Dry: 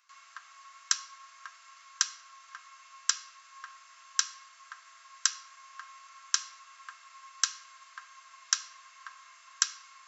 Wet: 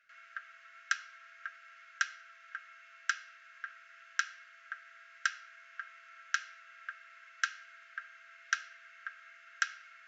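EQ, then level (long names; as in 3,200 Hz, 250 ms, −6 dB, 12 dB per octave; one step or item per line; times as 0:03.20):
elliptic band-stop filter 630–1,400 Hz, stop band 60 dB
high-frequency loss of the air 270 metres
parametric band 4,300 Hz −14 dB 1.6 octaves
+12.0 dB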